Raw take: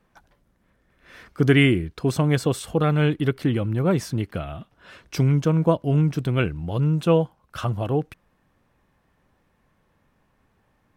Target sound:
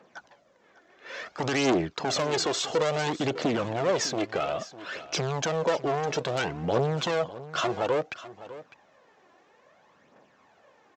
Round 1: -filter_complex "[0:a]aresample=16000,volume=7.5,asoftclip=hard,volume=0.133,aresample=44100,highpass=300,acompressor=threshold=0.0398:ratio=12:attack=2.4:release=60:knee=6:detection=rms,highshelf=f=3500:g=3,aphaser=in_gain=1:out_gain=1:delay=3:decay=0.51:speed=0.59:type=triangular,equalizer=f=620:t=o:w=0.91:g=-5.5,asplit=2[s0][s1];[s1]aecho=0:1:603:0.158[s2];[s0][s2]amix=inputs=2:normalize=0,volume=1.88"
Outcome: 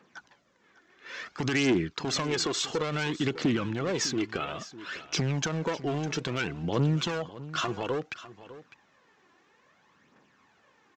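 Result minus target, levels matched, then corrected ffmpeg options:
overload inside the chain: distortion -6 dB; 500 Hz band -3.5 dB
-filter_complex "[0:a]aresample=16000,volume=17.8,asoftclip=hard,volume=0.0562,aresample=44100,highpass=300,acompressor=threshold=0.0398:ratio=12:attack=2.4:release=60:knee=6:detection=rms,highshelf=f=3500:g=3,aphaser=in_gain=1:out_gain=1:delay=3:decay=0.51:speed=0.59:type=triangular,equalizer=f=620:t=o:w=0.91:g=6,asplit=2[s0][s1];[s1]aecho=0:1:603:0.158[s2];[s0][s2]amix=inputs=2:normalize=0,volume=1.88"

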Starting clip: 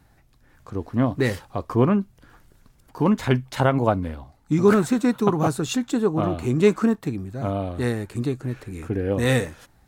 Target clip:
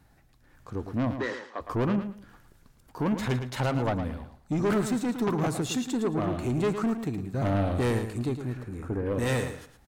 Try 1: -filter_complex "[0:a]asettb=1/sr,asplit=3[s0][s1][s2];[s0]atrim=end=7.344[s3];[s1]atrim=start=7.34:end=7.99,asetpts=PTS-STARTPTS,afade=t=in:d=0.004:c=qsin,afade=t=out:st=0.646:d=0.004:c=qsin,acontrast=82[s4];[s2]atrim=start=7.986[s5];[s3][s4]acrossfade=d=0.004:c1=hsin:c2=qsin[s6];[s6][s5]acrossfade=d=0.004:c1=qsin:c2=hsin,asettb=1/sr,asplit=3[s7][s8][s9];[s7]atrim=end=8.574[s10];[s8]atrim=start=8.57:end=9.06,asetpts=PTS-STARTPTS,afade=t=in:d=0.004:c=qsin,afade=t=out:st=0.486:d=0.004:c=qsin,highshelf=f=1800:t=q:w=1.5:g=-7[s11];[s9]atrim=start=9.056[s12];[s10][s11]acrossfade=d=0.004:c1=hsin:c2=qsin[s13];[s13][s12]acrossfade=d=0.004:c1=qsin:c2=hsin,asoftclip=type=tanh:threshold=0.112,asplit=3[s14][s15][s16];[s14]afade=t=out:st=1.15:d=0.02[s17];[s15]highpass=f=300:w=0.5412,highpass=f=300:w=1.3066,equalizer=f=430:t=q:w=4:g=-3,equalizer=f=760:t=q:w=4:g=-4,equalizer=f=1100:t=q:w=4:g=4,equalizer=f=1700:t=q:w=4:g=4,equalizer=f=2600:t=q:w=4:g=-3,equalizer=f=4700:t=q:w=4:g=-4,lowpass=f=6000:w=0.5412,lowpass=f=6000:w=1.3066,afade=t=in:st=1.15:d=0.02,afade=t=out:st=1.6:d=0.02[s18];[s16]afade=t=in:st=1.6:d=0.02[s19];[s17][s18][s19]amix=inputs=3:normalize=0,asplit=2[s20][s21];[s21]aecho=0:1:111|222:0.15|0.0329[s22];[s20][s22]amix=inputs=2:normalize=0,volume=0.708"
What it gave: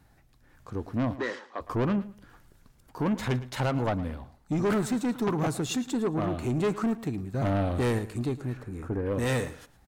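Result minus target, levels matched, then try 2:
echo-to-direct -7.5 dB
-filter_complex "[0:a]asettb=1/sr,asplit=3[s0][s1][s2];[s0]atrim=end=7.344[s3];[s1]atrim=start=7.34:end=7.99,asetpts=PTS-STARTPTS,afade=t=in:d=0.004:c=qsin,afade=t=out:st=0.646:d=0.004:c=qsin,acontrast=82[s4];[s2]atrim=start=7.986[s5];[s3][s4]acrossfade=d=0.004:c1=hsin:c2=qsin[s6];[s6][s5]acrossfade=d=0.004:c1=qsin:c2=hsin,asettb=1/sr,asplit=3[s7][s8][s9];[s7]atrim=end=8.574[s10];[s8]atrim=start=8.57:end=9.06,asetpts=PTS-STARTPTS,afade=t=in:d=0.004:c=qsin,afade=t=out:st=0.486:d=0.004:c=qsin,highshelf=f=1800:t=q:w=1.5:g=-7[s11];[s9]atrim=start=9.056[s12];[s10][s11]acrossfade=d=0.004:c1=hsin:c2=qsin[s13];[s13][s12]acrossfade=d=0.004:c1=qsin:c2=hsin,asoftclip=type=tanh:threshold=0.112,asplit=3[s14][s15][s16];[s14]afade=t=out:st=1.15:d=0.02[s17];[s15]highpass=f=300:w=0.5412,highpass=f=300:w=1.3066,equalizer=f=430:t=q:w=4:g=-3,equalizer=f=760:t=q:w=4:g=-4,equalizer=f=1100:t=q:w=4:g=4,equalizer=f=1700:t=q:w=4:g=4,equalizer=f=2600:t=q:w=4:g=-3,equalizer=f=4700:t=q:w=4:g=-4,lowpass=f=6000:w=0.5412,lowpass=f=6000:w=1.3066,afade=t=in:st=1.15:d=0.02,afade=t=out:st=1.6:d=0.02[s18];[s16]afade=t=in:st=1.6:d=0.02[s19];[s17][s18][s19]amix=inputs=3:normalize=0,asplit=2[s20][s21];[s21]aecho=0:1:111|222|333:0.355|0.0781|0.0172[s22];[s20][s22]amix=inputs=2:normalize=0,volume=0.708"

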